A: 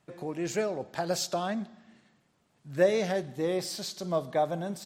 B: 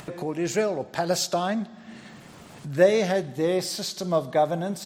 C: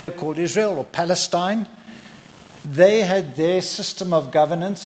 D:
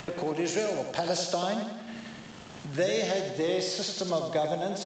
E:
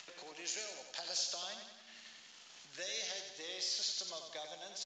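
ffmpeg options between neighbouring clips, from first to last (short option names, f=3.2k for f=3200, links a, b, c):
-af "acompressor=mode=upward:threshold=-34dB:ratio=2.5,volume=5.5dB"
-af "aresample=16000,aeval=exprs='sgn(val(0))*max(abs(val(0))-0.00266,0)':c=same,aresample=44100,equalizer=f=3k:t=o:w=0.33:g=3.5,volume=5dB"
-filter_complex "[0:a]acrossover=split=320|870|3100[a][b][c][d];[a]acompressor=threshold=-39dB:ratio=4[e];[b]acompressor=threshold=-27dB:ratio=4[f];[c]acompressor=threshold=-41dB:ratio=4[g];[d]acompressor=threshold=-32dB:ratio=4[h];[e][f][g][h]amix=inputs=4:normalize=0,asplit=2[i][j];[j]aecho=0:1:92|184|276|368|460|552|644:0.473|0.26|0.143|0.0787|0.0433|0.0238|0.0131[k];[i][k]amix=inputs=2:normalize=0,volume=-2dB"
-af "bandpass=f=5.5k:t=q:w=0.89:csg=0,volume=-2.5dB" -ar 16000 -c:a pcm_mulaw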